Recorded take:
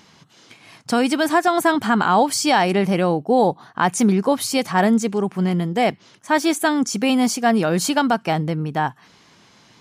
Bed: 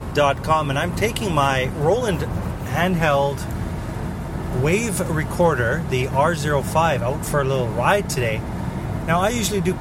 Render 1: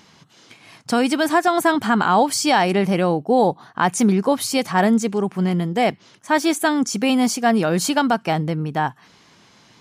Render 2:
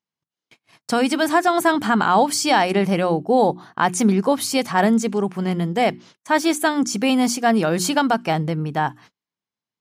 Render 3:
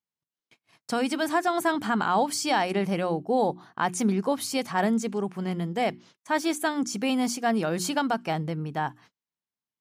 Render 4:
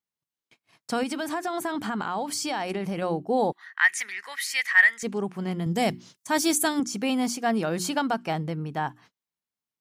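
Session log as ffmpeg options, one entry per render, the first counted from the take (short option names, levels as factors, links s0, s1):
-af anull
-af "bandreject=f=60:t=h:w=6,bandreject=f=120:t=h:w=6,bandreject=f=180:t=h:w=6,bandreject=f=240:t=h:w=6,bandreject=f=300:t=h:w=6,bandreject=f=360:t=h:w=6,agate=range=0.01:threshold=0.00708:ratio=16:detection=peak"
-af "volume=0.422"
-filter_complex "[0:a]asettb=1/sr,asplit=3[s0][s1][s2];[s0]atrim=end=1.034[s3];[s1]atrim=start=1.03:end=3.02,asetpts=PTS-STARTPTS,afade=t=in:d=0.004:c=qsin,afade=t=out:st=1.986:d=0.004:c=qsin,acompressor=threshold=0.0562:ratio=6:attack=3.2:release=140:knee=1:detection=peak[s4];[s2]atrim=start=3.016[s5];[s3][s4]acrossfade=d=0.004:c1=hsin:c2=qsin[s6];[s6][s5]acrossfade=d=0.004:c1=qsin:c2=hsin,asettb=1/sr,asplit=3[s7][s8][s9];[s7]atrim=end=3.524[s10];[s8]atrim=start=3.52:end=5.03,asetpts=PTS-STARTPTS,afade=t=in:d=0.004:c=qsin,afade=t=out:st=1.506:d=0.004:c=qsin,highpass=f=1900:t=q:w=15[s11];[s9]atrim=start=5.026[s12];[s10][s11]acrossfade=d=0.004:c1=hsin:c2=qsin[s13];[s13][s12]acrossfade=d=0.004:c1=qsin:c2=hsin,asettb=1/sr,asplit=3[s14][s15][s16];[s14]atrim=end=5.664[s17];[s15]atrim=start=5.66:end=6.8,asetpts=PTS-STARTPTS,afade=t=in:d=0.004:c=qsin,afade=t=out:st=1.136:d=0.004:c=qsin,bass=f=250:g=9,treble=f=4000:g=12[s18];[s16]atrim=start=6.796[s19];[s17][s18]acrossfade=d=0.004:c1=hsin:c2=qsin[s20];[s20][s19]acrossfade=d=0.004:c1=qsin:c2=hsin"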